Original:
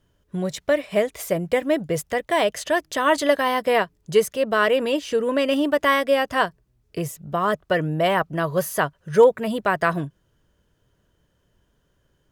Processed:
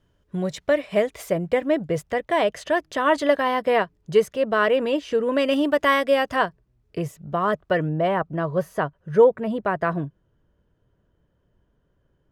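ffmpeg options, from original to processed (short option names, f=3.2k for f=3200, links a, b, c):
-af "asetnsamples=n=441:p=0,asendcmd='1.3 lowpass f 2500;5.32 lowpass f 6600;6.36 lowpass f 2500;7.89 lowpass f 1000',lowpass=f=4.4k:p=1"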